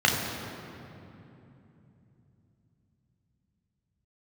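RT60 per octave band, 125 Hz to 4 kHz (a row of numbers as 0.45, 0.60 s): 5.5, 4.7, 3.2, 2.7, 2.4, 1.7 s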